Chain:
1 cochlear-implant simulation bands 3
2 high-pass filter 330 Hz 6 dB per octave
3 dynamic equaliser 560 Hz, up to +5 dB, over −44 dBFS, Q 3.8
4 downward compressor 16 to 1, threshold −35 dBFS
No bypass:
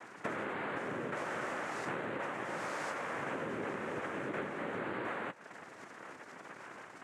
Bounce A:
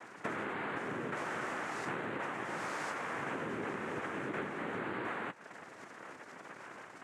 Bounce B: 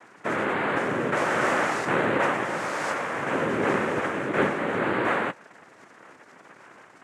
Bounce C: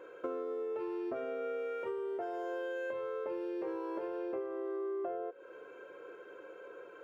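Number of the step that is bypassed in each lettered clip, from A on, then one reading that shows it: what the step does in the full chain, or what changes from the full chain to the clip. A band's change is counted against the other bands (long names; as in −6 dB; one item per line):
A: 3, 500 Hz band −2.0 dB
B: 4, average gain reduction 9.5 dB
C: 1, 2 kHz band −10.5 dB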